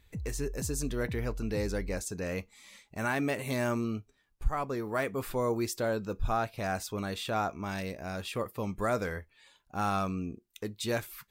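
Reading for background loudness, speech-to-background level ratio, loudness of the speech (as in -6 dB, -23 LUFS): -42.0 LUFS, 8.0 dB, -34.0 LUFS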